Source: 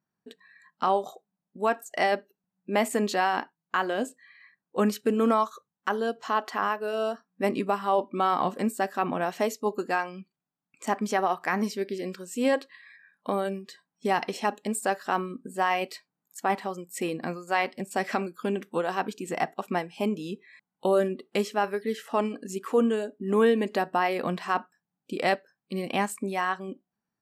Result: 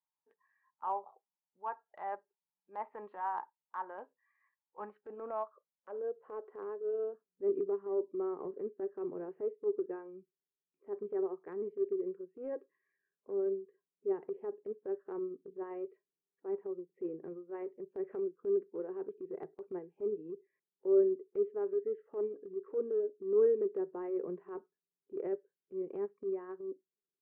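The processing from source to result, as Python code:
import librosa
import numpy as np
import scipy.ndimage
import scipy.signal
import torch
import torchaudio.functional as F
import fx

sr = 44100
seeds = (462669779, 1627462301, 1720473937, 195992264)

y = fx.cabinet(x, sr, low_hz=160.0, low_slope=12, high_hz=2100.0, hz=(160.0, 240.0, 390.0, 710.0), db=(10, -7, 4, -8))
y = fx.filter_sweep_bandpass(y, sr, from_hz=890.0, to_hz=400.0, start_s=4.8, end_s=6.72, q=6.0)
y = fx.transient(y, sr, attack_db=-8, sustain_db=-2)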